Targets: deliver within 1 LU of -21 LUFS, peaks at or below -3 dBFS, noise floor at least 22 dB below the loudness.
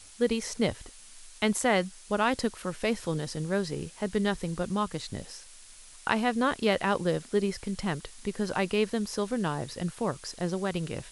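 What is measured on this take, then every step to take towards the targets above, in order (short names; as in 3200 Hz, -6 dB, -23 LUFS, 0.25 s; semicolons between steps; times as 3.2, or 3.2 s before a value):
noise floor -51 dBFS; noise floor target -52 dBFS; loudness -30.0 LUFS; peak -9.0 dBFS; loudness target -21.0 LUFS
-> noise print and reduce 6 dB; gain +9 dB; limiter -3 dBFS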